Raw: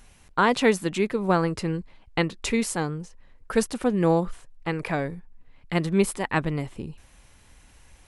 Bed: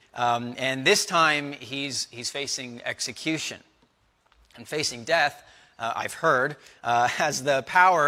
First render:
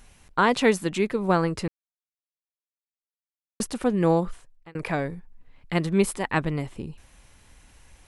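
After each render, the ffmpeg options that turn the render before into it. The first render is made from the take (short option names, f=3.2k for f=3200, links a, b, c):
-filter_complex "[0:a]asplit=4[a][b][c][d];[a]atrim=end=1.68,asetpts=PTS-STARTPTS,afade=t=out:st=1.676:d=0.004:c=hsin[e];[b]atrim=start=1.68:end=3.6,asetpts=PTS-STARTPTS,volume=0[f];[c]atrim=start=3.6:end=4.75,asetpts=PTS-STARTPTS,afade=t=in:d=0.004:c=hsin,afade=t=out:st=0.66:d=0.49[g];[d]atrim=start=4.75,asetpts=PTS-STARTPTS,afade=t=in:d=0.004:c=hsin[h];[e][f][g][h]concat=n=4:v=0:a=1"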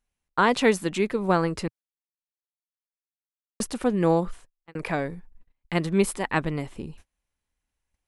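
-af "agate=range=-29dB:threshold=-44dB:ratio=16:detection=peak,equalizer=f=120:w=2.2:g=-4.5"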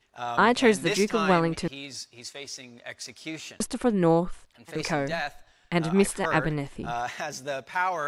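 -filter_complex "[1:a]volume=-9dB[a];[0:a][a]amix=inputs=2:normalize=0"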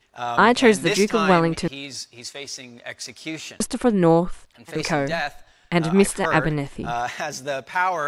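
-af "volume=5dB"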